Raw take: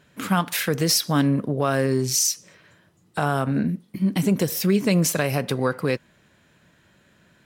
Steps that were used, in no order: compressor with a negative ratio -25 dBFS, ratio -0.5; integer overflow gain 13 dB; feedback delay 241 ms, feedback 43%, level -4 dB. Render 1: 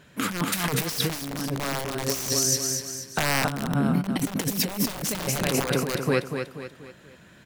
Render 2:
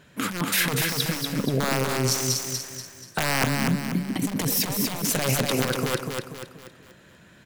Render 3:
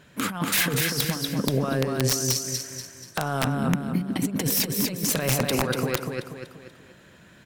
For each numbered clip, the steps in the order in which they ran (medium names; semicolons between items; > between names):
feedback delay > integer overflow > compressor with a negative ratio; integer overflow > compressor with a negative ratio > feedback delay; compressor with a negative ratio > feedback delay > integer overflow